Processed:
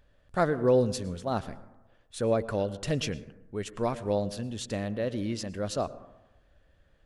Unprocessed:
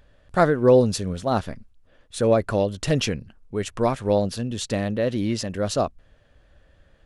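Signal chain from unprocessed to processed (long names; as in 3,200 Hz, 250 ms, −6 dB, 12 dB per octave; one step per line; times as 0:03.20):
dense smooth reverb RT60 1 s, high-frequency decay 0.3×, pre-delay 95 ms, DRR 16.5 dB
level −7.5 dB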